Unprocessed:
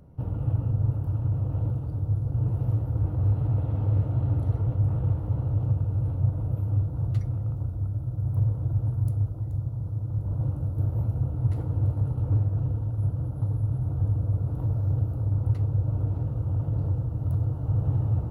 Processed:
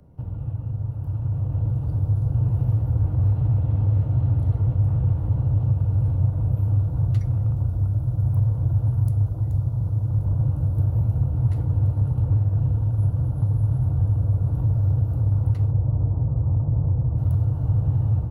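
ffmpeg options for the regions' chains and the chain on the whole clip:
ffmpeg -i in.wav -filter_complex "[0:a]asettb=1/sr,asplit=3[link_01][link_02][link_03];[link_01]atrim=end=15.714[link_04];[link_02]atrim=start=15.71:end=17.18,asetpts=PTS-STARTPTS,afade=type=in:duration=0.004:curve=qsin,afade=type=out:start_time=1.466:duration=0.004:curve=qsin,lowpass=frequency=1200:width=0.5412,lowpass=frequency=1200:width=1.3066,asplit=2[link_05][link_06];[link_06]adelay=15,volume=-14dB[link_07];[link_05][link_07]amix=inputs=2:normalize=0,atrim=end_sample=64827[link_08];[link_03]atrim=start=17.176[link_09];[link_04][link_08]acrossfade=duration=0.004:curve1=hsin:curve2=qsin[link_10];[link_10][link_09]acrossfade=duration=0.004:curve1=qsin:curve2=hsin,acrossover=split=200|530[link_11][link_12][link_13];[link_11]acompressor=threshold=-25dB:ratio=4[link_14];[link_12]acompressor=threshold=-53dB:ratio=4[link_15];[link_13]acompressor=threshold=-54dB:ratio=4[link_16];[link_14][link_15][link_16]amix=inputs=3:normalize=0,bandreject=frequency=1300:width=14,dynaudnorm=framelen=960:gausssize=3:maxgain=8dB" out.wav

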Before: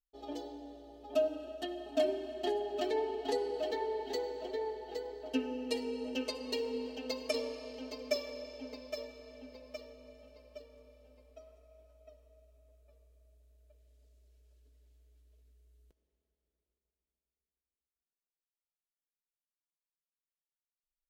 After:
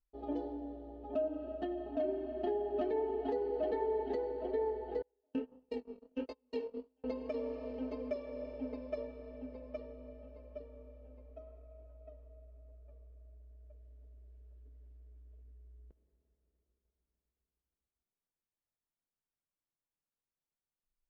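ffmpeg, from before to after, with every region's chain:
ffmpeg -i in.wav -filter_complex "[0:a]asettb=1/sr,asplit=3[link_01][link_02][link_03];[link_01]atrim=end=5.024[link_04];[link_02]atrim=start=5.02:end=7.04,asetpts=PTS-STARTPTS,afade=type=in:duration=0.004:curve=qsin,afade=type=out:start_time=2.016:duration=0.004:curve=qsin,agate=range=-36dB:threshold=-36dB:ratio=16:release=100:detection=peak,bass=frequency=250:gain=-3,treble=frequency=4000:gain=8,flanger=delay=18:depth=7.9:speed=1.5[link_05];[link_03]atrim=start=7.036[link_06];[link_04][link_05]acrossfade=duration=0.004:curve1=hsin:curve2=qsin[link_07];[link_07][link_06]acrossfade=duration=0.004:curve1=qsin:curve2=hsin,lowshelf=frequency=360:gain=9,alimiter=level_in=1dB:limit=-24dB:level=0:latency=1:release=340,volume=-1dB,lowpass=1600" out.wav

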